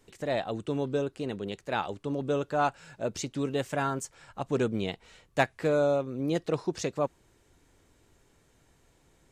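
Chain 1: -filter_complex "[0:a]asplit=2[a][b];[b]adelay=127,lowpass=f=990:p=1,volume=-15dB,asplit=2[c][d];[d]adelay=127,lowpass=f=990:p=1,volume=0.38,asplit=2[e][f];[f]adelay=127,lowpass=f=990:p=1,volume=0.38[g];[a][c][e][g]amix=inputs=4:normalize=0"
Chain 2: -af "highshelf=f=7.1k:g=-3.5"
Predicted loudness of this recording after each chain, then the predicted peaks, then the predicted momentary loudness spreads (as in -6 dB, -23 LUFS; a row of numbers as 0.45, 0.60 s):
-31.0, -31.0 LUFS; -9.5, -9.5 dBFS; 9, 9 LU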